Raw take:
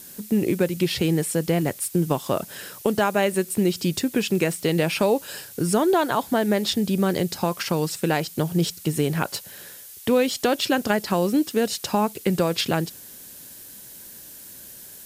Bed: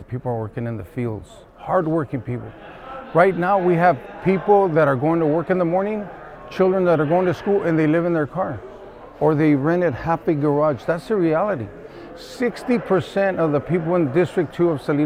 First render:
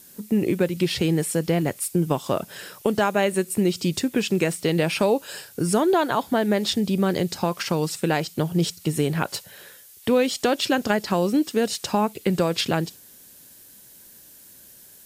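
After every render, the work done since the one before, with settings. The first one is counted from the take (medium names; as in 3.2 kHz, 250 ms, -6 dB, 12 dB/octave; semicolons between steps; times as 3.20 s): noise print and reduce 6 dB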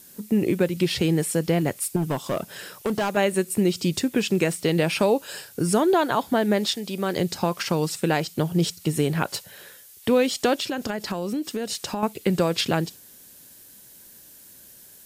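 1.96–3.17 s: hard clipper -20 dBFS; 6.65–7.16 s: high-pass 1 kHz -> 330 Hz 6 dB/octave; 10.58–12.03 s: compression, threshold -24 dBFS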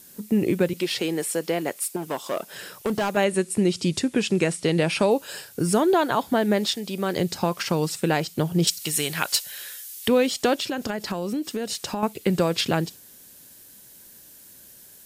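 0.73–2.53 s: high-pass 340 Hz; 3.24–5.11 s: steep low-pass 11 kHz 48 dB/octave; 8.67–10.08 s: tilt shelf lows -10 dB, about 1.1 kHz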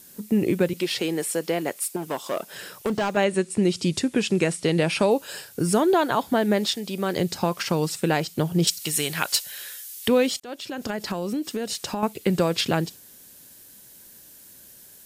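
2.89–3.63 s: peaking EQ 12 kHz -13.5 dB 0.45 oct; 10.40–10.94 s: fade in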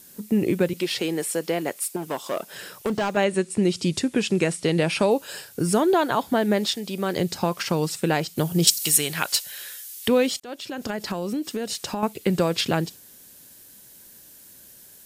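8.36–8.96 s: treble shelf 6.2 kHz -> 3.9 kHz +9.5 dB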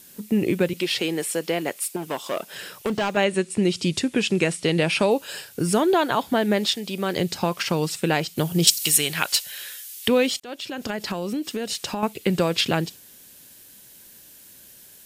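peaking EQ 2.8 kHz +4.5 dB 1.1 oct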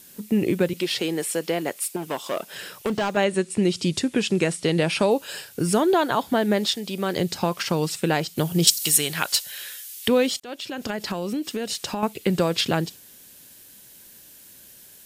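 dynamic bell 2.5 kHz, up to -4 dB, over -37 dBFS, Q 2.1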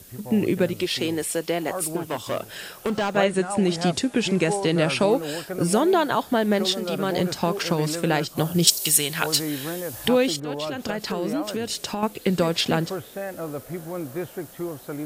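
add bed -13 dB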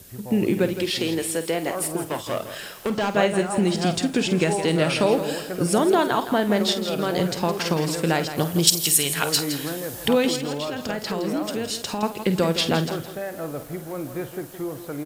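doubling 49 ms -12 dB; bit-crushed delay 165 ms, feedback 35%, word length 7-bit, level -10.5 dB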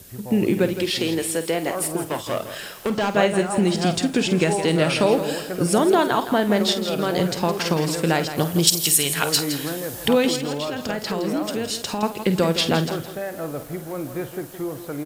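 trim +1.5 dB; peak limiter -2 dBFS, peak gain reduction 2.5 dB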